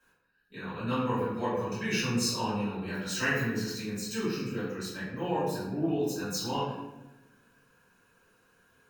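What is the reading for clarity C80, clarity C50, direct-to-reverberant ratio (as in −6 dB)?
3.0 dB, 0.0 dB, −13.5 dB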